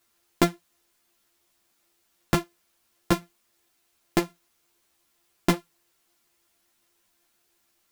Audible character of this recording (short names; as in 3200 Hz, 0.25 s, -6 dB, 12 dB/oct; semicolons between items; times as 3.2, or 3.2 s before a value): a buzz of ramps at a fixed pitch in blocks of 128 samples; tremolo saw down 2.8 Hz, depth 45%; a quantiser's noise floor 12-bit, dither triangular; a shimmering, thickened sound